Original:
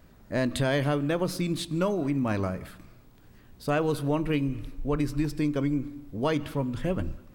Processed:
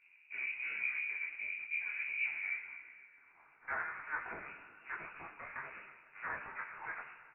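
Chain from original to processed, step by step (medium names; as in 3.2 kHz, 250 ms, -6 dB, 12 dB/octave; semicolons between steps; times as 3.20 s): comb 1.7 ms, depth 52%; peak limiter -22.5 dBFS, peak gain reduction 9 dB; flange 0.73 Hz, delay 3.1 ms, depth 6.5 ms, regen +26%; full-wave rectifier; band-pass sweep 320 Hz -> 1.4 kHz, 2.25–3.36 s; thinning echo 126 ms, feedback 82%, high-pass 170 Hz, level -19.5 dB; reverberation RT60 1.0 s, pre-delay 4 ms, DRR 7.5 dB; frequency inversion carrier 2.7 kHz; detune thickener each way 48 cents; trim +9 dB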